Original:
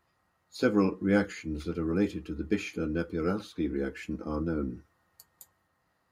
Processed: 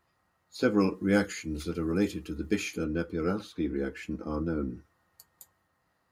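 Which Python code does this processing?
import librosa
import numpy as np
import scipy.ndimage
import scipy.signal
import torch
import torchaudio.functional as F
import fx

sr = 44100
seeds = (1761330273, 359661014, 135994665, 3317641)

y = fx.high_shelf(x, sr, hz=5000.0, db=12.0, at=(0.8, 2.84))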